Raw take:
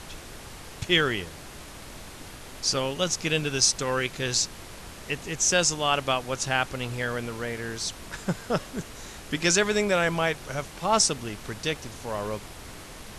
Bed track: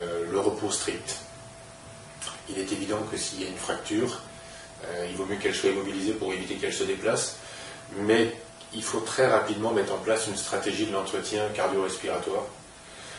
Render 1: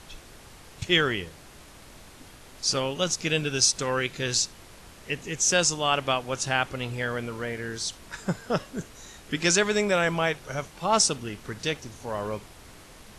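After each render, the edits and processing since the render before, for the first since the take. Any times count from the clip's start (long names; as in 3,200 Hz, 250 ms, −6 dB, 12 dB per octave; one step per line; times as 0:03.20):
noise reduction from a noise print 6 dB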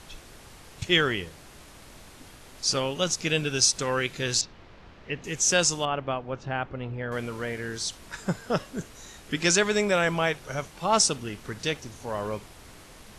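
0:04.41–0:05.24: high-frequency loss of the air 230 metres
0:05.85–0:07.12: head-to-tape spacing loss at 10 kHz 42 dB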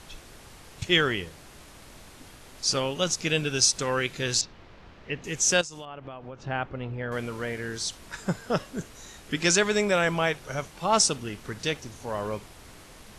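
0:05.61–0:06.45: downward compressor 20 to 1, threshold −35 dBFS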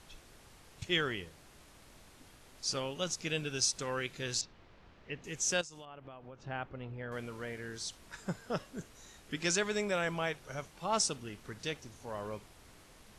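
level −9.5 dB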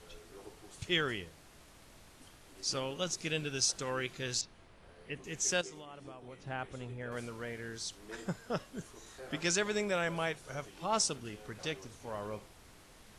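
mix in bed track −27 dB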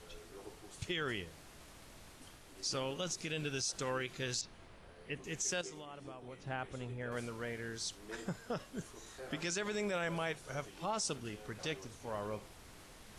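brickwall limiter −27.5 dBFS, peak gain reduction 9.5 dB
reversed playback
upward compression, threshold −50 dBFS
reversed playback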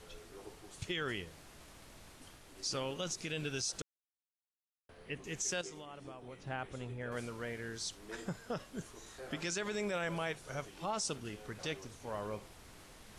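0:03.82–0:04.89: silence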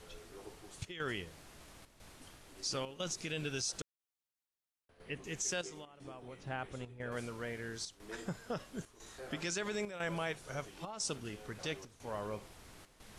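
square-wave tremolo 1 Hz, depth 65%, duty 85%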